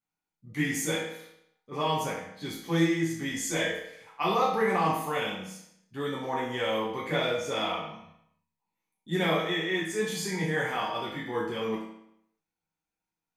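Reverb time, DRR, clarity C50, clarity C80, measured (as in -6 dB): 0.75 s, -7.5 dB, 2.5 dB, 6.0 dB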